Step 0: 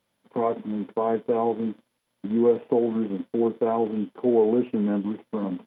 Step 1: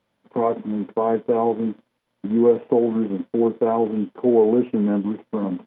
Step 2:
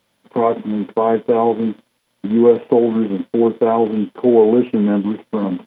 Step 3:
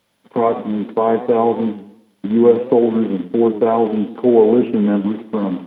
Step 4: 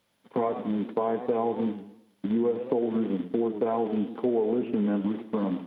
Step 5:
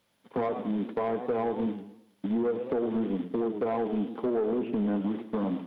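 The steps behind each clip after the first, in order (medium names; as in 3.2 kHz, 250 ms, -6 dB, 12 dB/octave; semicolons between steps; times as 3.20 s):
low-pass 2.6 kHz 6 dB/octave; trim +4 dB
treble shelf 3 kHz +12 dB; trim +4.5 dB
modulated delay 106 ms, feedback 38%, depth 163 cents, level -14 dB
compression 6:1, threshold -16 dBFS, peak gain reduction 10 dB; trim -6.5 dB
saturation -21.5 dBFS, distortion -16 dB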